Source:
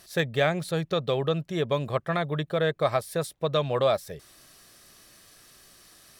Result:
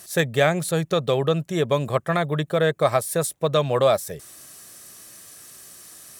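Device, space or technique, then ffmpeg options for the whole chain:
budget condenser microphone: -af "highpass=72,highshelf=f=5.8k:t=q:w=1.5:g=6.5,volume=5dB"

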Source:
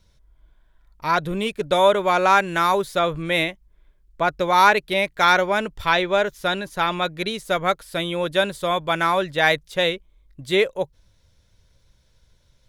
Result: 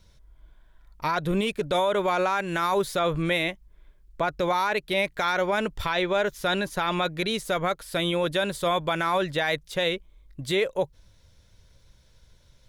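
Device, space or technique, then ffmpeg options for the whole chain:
stacked limiters: -af "alimiter=limit=-8.5dB:level=0:latency=1:release=444,alimiter=limit=-14dB:level=0:latency=1:release=146,alimiter=limit=-18dB:level=0:latency=1:release=24,volume=2.5dB"

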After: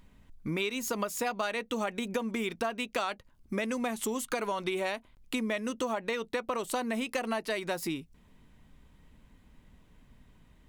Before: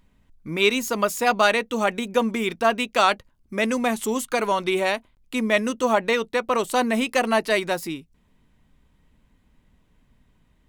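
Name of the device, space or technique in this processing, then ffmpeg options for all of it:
serial compression, peaks first: -af "acompressor=threshold=-28dB:ratio=6,acompressor=threshold=-37dB:ratio=1.5,volume=2.5dB"

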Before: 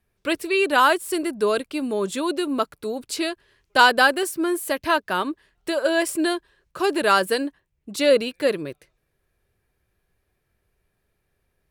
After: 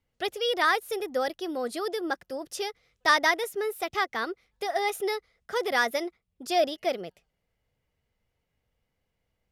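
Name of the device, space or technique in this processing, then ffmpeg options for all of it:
nightcore: -af "asetrate=54243,aresample=44100,lowpass=11k,volume=-6.5dB"

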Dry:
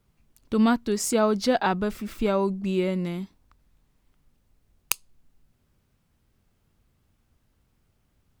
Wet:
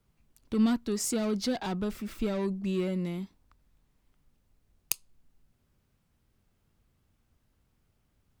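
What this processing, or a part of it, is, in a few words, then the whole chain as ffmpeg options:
one-band saturation: -filter_complex "[0:a]acrossover=split=350|3200[a][b][c];[b]asoftclip=type=tanh:threshold=-31.5dB[d];[a][d][c]amix=inputs=3:normalize=0,volume=-3.5dB"

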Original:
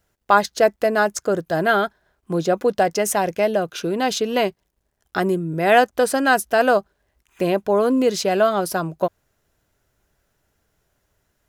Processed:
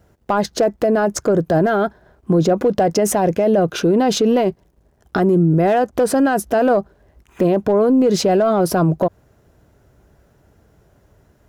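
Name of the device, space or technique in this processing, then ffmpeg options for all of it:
mastering chain: -af "highpass=45,equalizer=f=5.6k:t=o:w=0.77:g=1.5,acompressor=threshold=-18dB:ratio=2.5,asoftclip=type=tanh:threshold=-11.5dB,tiltshelf=f=1.2k:g=8,asoftclip=type=hard:threshold=-9dB,alimiter=level_in=18dB:limit=-1dB:release=50:level=0:latency=1,volume=-7.5dB"

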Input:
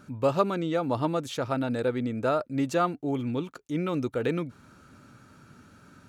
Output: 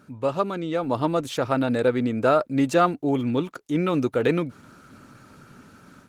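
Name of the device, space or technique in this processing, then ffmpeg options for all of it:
video call: -af "highpass=f=120:p=1,dynaudnorm=f=600:g=3:m=7dB" -ar 48000 -c:a libopus -b:a 20k

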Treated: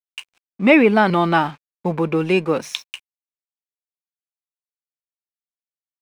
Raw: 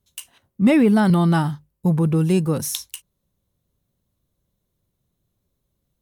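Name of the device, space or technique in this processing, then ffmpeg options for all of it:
pocket radio on a weak battery: -af "highpass=380,lowpass=3.3k,aeval=exprs='sgn(val(0))*max(abs(val(0))-0.00237,0)':c=same,equalizer=f=2.4k:t=o:w=0.26:g=10,volume=7.5dB"

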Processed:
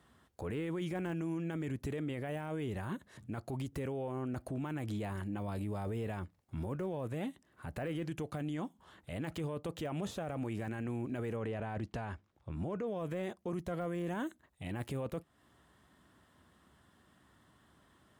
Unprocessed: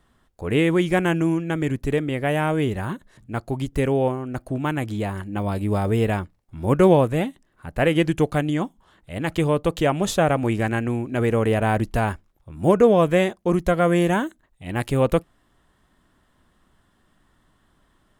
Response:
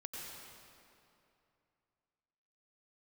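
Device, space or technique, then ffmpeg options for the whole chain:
podcast mastering chain: -filter_complex "[0:a]asettb=1/sr,asplit=3[a][b][c];[a]atrim=end=11.364[d];[b]atrim=start=11.36:end=12.87,asetpts=PTS-STARTPTS,afade=t=in:d=0.004:c=qsin,afade=t=out:st=1.506:d=0.004:c=qsin,lowpass=5.8k[e];[c]atrim=start=12.866[f];[d][e]acrossfade=d=0.004:c1=hsin:c2=qsin[g];[g][f]acrossfade=d=0.004:c1=qsin:c2=hsin,highpass=f=63:w=0.5412,highpass=f=63:w=1.3066,deesser=0.8,acompressor=threshold=-31dB:ratio=2.5,alimiter=level_in=4.5dB:limit=-24dB:level=0:latency=1:release=10,volume=-4.5dB,volume=-1.5dB" -ar 44100 -c:a libmp3lame -b:a 112k

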